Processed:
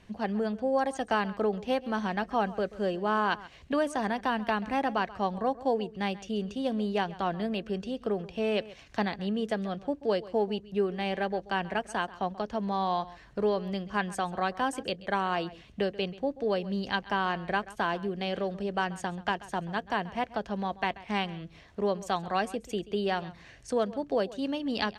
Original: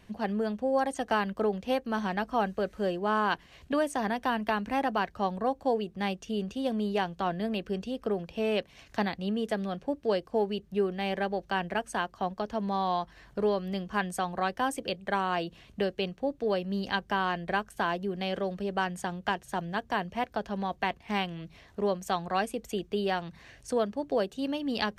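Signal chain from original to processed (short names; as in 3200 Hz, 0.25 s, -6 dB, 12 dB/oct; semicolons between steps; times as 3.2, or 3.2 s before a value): LPF 8900 Hz 12 dB/oct; outdoor echo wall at 23 m, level -18 dB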